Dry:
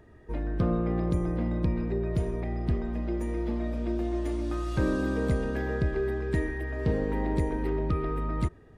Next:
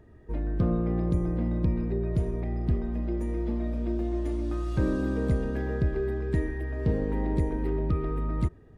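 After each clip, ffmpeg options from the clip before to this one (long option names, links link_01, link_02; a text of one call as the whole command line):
ffmpeg -i in.wav -af "lowshelf=frequency=490:gain=7,volume=-5dB" out.wav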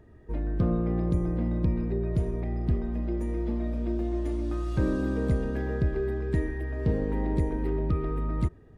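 ffmpeg -i in.wav -af anull out.wav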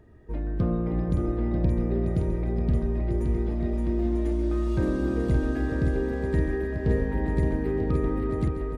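ffmpeg -i in.wav -af "aecho=1:1:570|940.5|1181|1338|1440:0.631|0.398|0.251|0.158|0.1" out.wav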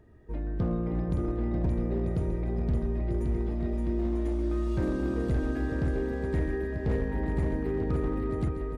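ffmpeg -i in.wav -af "asoftclip=type=hard:threshold=-19dB,volume=-3dB" out.wav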